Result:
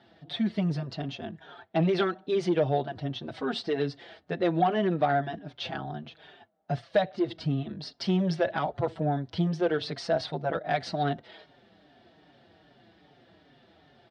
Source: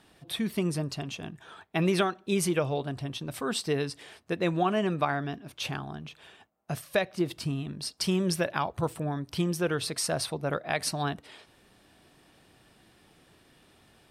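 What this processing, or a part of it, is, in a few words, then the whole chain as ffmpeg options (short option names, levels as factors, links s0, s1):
barber-pole flanger into a guitar amplifier: -filter_complex "[0:a]asplit=2[s0][s1];[s1]adelay=5.3,afreqshift=-2.5[s2];[s0][s2]amix=inputs=2:normalize=1,asoftclip=type=tanh:threshold=0.0794,highpass=94,equalizer=f=690:t=q:w=4:g=6,equalizer=f=1100:t=q:w=4:g=-7,equalizer=f=2500:t=q:w=4:g=-8,lowpass=f=4200:w=0.5412,lowpass=f=4200:w=1.3066,volume=1.78"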